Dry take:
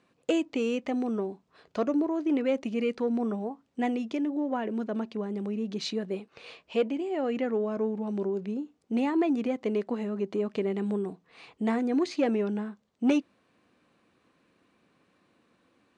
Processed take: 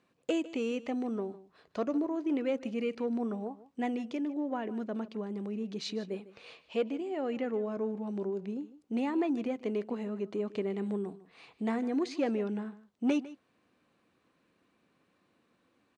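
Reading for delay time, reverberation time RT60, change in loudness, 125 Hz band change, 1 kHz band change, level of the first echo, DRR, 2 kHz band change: 152 ms, no reverb audible, −4.5 dB, can't be measured, −4.5 dB, −17.5 dB, no reverb audible, −4.5 dB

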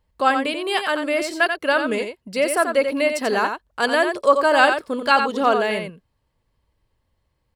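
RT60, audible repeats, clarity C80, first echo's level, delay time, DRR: no reverb audible, 1, no reverb audible, −7.0 dB, 88 ms, no reverb audible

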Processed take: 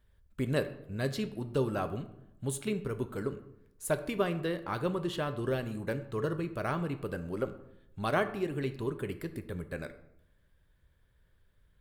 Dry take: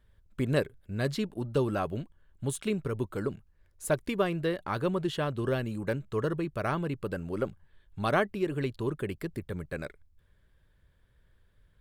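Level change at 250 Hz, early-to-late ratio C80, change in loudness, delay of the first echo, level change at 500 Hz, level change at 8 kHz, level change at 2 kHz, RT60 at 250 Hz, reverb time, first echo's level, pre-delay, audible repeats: −2.5 dB, 15.5 dB, −2.5 dB, no echo audible, −2.5 dB, −1.0 dB, −2.5 dB, 0.90 s, 0.85 s, no echo audible, 5 ms, no echo audible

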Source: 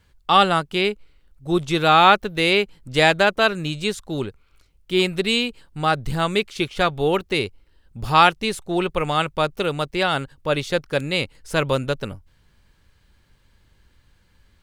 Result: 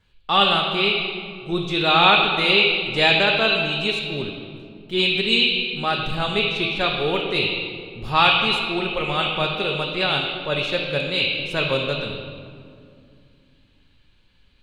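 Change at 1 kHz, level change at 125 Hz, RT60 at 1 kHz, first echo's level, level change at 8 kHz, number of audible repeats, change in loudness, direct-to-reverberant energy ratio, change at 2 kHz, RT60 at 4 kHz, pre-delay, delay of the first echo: −3.0 dB, −2.5 dB, 2.1 s, no echo audible, can't be measured, no echo audible, +1.0 dB, −5.5 dB, +2.5 dB, 1.3 s, 5 ms, no echo audible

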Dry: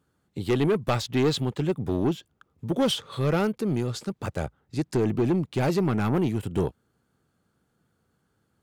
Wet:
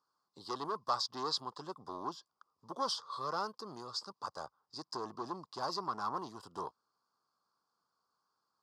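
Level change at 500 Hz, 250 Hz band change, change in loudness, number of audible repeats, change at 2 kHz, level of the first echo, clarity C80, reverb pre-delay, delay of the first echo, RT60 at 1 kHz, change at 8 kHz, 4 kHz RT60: −17.5 dB, −23.0 dB, −13.0 dB, no echo audible, −15.0 dB, no echo audible, no reverb audible, no reverb audible, no echo audible, no reverb audible, −8.5 dB, no reverb audible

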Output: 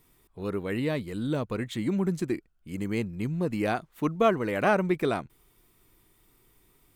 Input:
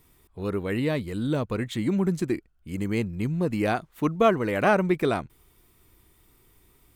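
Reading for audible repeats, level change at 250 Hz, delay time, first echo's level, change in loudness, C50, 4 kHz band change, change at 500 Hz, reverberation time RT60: no echo audible, −2.5 dB, no echo audible, no echo audible, −2.5 dB, no reverb audible, −2.5 dB, −2.5 dB, no reverb audible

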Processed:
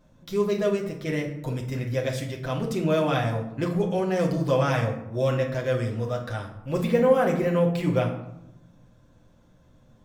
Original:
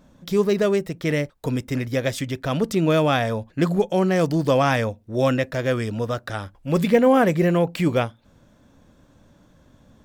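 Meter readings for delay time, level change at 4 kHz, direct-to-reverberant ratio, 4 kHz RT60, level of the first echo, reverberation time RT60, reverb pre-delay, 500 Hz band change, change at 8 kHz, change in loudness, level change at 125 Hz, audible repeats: no echo audible, −6.0 dB, −1.5 dB, 0.45 s, no echo audible, 0.90 s, 6 ms, −3.0 dB, −6.0 dB, −4.0 dB, −2.0 dB, no echo audible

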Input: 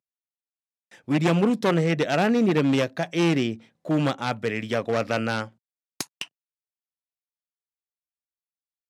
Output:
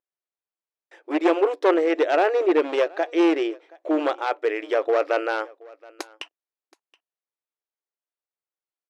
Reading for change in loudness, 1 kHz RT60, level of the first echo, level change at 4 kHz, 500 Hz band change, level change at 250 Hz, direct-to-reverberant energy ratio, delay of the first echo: +1.5 dB, no reverb audible, −24.0 dB, −4.0 dB, +5.0 dB, −1.5 dB, no reverb audible, 724 ms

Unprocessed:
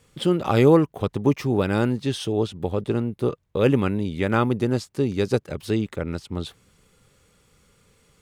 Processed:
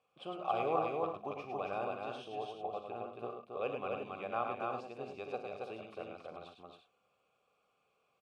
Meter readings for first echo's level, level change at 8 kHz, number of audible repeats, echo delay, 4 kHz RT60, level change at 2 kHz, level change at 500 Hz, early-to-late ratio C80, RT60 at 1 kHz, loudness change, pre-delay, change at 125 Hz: −12.0 dB, below −25 dB, 5, 43 ms, no reverb audible, −14.5 dB, −15.5 dB, no reverb audible, no reverb audible, −16.5 dB, no reverb audible, −29.5 dB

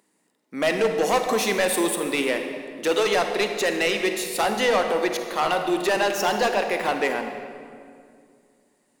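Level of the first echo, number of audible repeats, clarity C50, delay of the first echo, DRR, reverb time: no echo audible, no echo audible, 5.5 dB, no echo audible, 5.0 dB, 2.3 s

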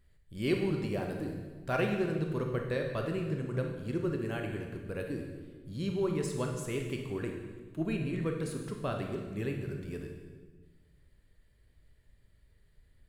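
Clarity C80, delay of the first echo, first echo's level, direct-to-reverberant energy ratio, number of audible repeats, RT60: 6.5 dB, no echo audible, no echo audible, 2.0 dB, no echo audible, 1.4 s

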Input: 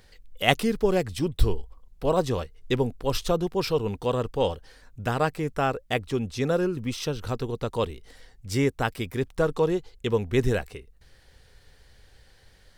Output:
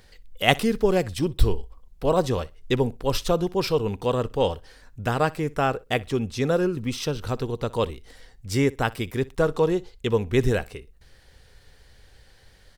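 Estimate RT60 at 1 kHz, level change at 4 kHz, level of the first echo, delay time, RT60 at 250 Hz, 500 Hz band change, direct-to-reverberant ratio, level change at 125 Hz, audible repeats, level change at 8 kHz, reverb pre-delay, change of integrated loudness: no reverb audible, +2.0 dB, −22.0 dB, 61 ms, no reverb audible, +2.0 dB, no reverb audible, +2.0 dB, 1, +2.0 dB, no reverb audible, +2.0 dB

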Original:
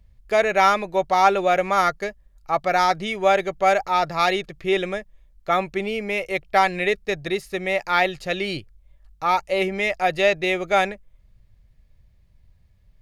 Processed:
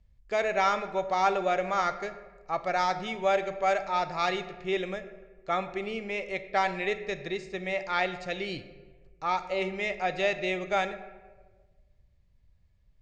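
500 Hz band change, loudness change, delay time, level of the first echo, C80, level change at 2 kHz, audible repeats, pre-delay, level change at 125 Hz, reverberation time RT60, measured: −8.0 dB, −8.0 dB, no echo audible, no echo audible, 13.5 dB, −8.0 dB, no echo audible, 17 ms, −7.5 dB, 1.4 s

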